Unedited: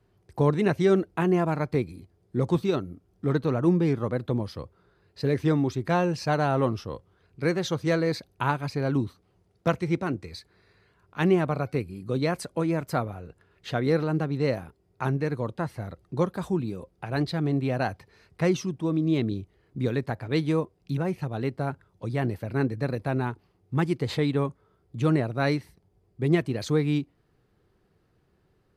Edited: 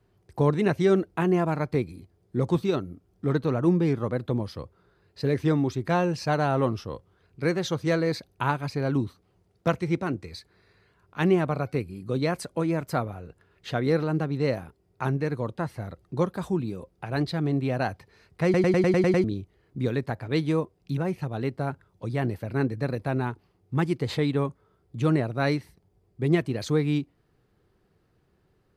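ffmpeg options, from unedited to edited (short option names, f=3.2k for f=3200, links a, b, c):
-filter_complex "[0:a]asplit=9[a][b][c][d][e][f][g][h][i];[a]atrim=end=18.542[j];[b]atrim=start=18.438:end=18.542[k];[c]atrim=start=18.438:end=18.542[l];[d]atrim=start=18.438:end=18.542[m];[e]atrim=start=18.438:end=18.542[n];[f]atrim=start=18.438:end=18.542[o];[g]atrim=start=18.438:end=18.542[p];[h]atrim=start=18.438:end=18.542[q];[i]atrim=start=19.238[r];[j][k]acrossfade=d=0.004:c1=hsin:c2=hsin[s];[s][l]acrossfade=d=0.004:c1=hsin:c2=hsin[t];[t][m]acrossfade=d=0.004:c1=hsin:c2=hsin[u];[u][n]acrossfade=d=0.004:c1=hsin:c2=hsin[v];[v][o]acrossfade=d=0.004:c1=hsin:c2=hsin[w];[w][p]acrossfade=d=0.004:c1=hsin:c2=hsin[x];[x][q]acrossfade=d=0.004:c1=hsin:c2=hsin[y];[y][r]acrossfade=d=0.004:c1=hsin:c2=hsin"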